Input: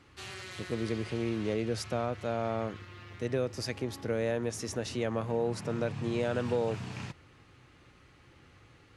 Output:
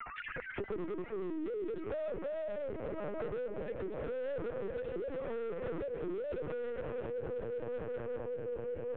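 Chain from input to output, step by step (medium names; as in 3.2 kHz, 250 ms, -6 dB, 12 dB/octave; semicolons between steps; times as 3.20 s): formants replaced by sine waves; low-pass 1.6 kHz 12 dB/octave; echo with a slow build-up 193 ms, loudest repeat 5, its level -16.5 dB; peak limiter -29 dBFS, peak gain reduction 9.5 dB; valve stage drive 40 dB, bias 0.45; rotary cabinet horn 0.85 Hz; LPC vocoder at 8 kHz pitch kept; three bands compressed up and down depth 100%; trim +6 dB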